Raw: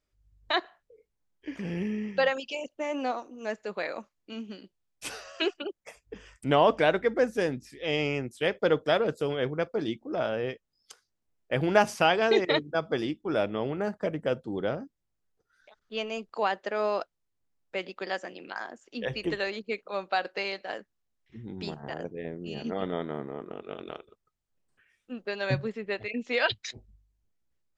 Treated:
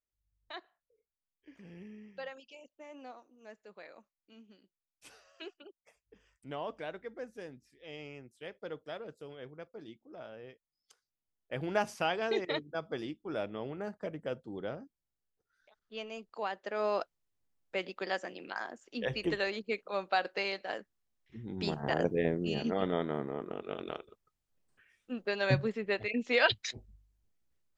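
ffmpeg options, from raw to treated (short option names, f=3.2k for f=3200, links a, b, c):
-af "volume=8dB,afade=t=in:st=10.48:d=1.33:silence=0.354813,afade=t=in:st=16.56:d=0.45:silence=0.446684,afade=t=in:st=21.48:d=0.67:silence=0.316228,afade=t=out:st=22.15:d=0.56:silence=0.398107"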